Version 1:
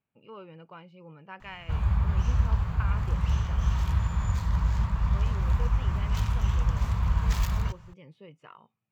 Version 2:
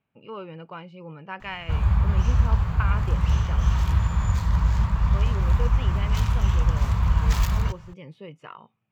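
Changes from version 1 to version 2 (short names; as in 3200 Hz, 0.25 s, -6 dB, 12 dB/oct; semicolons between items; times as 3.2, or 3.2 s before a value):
speech +8.0 dB; background +4.5 dB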